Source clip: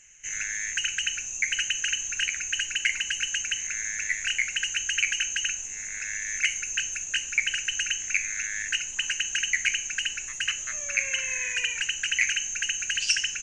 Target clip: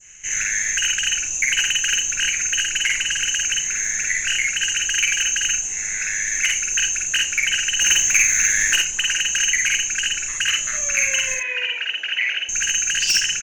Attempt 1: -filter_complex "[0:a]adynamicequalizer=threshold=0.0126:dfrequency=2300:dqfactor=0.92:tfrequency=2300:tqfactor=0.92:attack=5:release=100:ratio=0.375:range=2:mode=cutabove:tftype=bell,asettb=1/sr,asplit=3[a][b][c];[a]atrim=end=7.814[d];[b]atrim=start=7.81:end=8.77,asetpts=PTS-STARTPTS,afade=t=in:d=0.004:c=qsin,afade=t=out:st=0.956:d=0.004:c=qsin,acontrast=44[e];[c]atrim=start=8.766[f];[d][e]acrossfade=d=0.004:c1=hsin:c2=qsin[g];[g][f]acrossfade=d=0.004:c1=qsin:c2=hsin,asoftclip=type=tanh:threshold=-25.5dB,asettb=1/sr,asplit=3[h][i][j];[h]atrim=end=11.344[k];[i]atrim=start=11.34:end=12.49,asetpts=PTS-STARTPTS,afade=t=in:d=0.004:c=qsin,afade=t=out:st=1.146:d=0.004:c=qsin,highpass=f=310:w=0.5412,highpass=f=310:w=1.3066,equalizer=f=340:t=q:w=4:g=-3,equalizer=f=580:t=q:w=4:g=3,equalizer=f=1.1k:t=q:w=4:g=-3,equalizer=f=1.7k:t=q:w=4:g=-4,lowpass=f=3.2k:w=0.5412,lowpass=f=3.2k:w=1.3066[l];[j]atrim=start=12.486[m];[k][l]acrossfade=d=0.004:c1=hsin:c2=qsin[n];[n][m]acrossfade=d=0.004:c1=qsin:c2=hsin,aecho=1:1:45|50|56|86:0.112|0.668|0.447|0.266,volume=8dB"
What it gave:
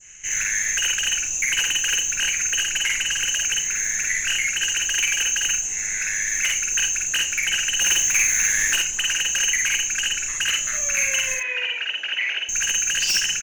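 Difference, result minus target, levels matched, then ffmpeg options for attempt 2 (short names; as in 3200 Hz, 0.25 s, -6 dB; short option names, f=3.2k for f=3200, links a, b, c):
soft clip: distortion +6 dB
-filter_complex "[0:a]adynamicequalizer=threshold=0.0126:dfrequency=2300:dqfactor=0.92:tfrequency=2300:tqfactor=0.92:attack=5:release=100:ratio=0.375:range=2:mode=cutabove:tftype=bell,asettb=1/sr,asplit=3[a][b][c];[a]atrim=end=7.814[d];[b]atrim=start=7.81:end=8.77,asetpts=PTS-STARTPTS,afade=t=in:d=0.004:c=qsin,afade=t=out:st=0.956:d=0.004:c=qsin,acontrast=44[e];[c]atrim=start=8.766[f];[d][e]acrossfade=d=0.004:c1=hsin:c2=qsin[g];[g][f]acrossfade=d=0.004:c1=qsin:c2=hsin,asoftclip=type=tanh:threshold=-19dB,asettb=1/sr,asplit=3[h][i][j];[h]atrim=end=11.344[k];[i]atrim=start=11.34:end=12.49,asetpts=PTS-STARTPTS,afade=t=in:d=0.004:c=qsin,afade=t=out:st=1.146:d=0.004:c=qsin,highpass=f=310:w=0.5412,highpass=f=310:w=1.3066,equalizer=f=340:t=q:w=4:g=-3,equalizer=f=580:t=q:w=4:g=3,equalizer=f=1.1k:t=q:w=4:g=-3,equalizer=f=1.7k:t=q:w=4:g=-4,lowpass=f=3.2k:w=0.5412,lowpass=f=3.2k:w=1.3066[l];[j]atrim=start=12.486[m];[k][l]acrossfade=d=0.004:c1=hsin:c2=qsin[n];[n][m]acrossfade=d=0.004:c1=qsin:c2=hsin,aecho=1:1:45|50|56|86:0.112|0.668|0.447|0.266,volume=8dB"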